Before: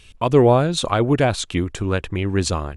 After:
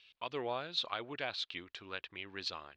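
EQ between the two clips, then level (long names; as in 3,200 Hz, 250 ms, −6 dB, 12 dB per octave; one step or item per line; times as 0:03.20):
resonant band-pass 4,500 Hz, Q 2.1
high-frequency loss of the air 340 metres
+2.5 dB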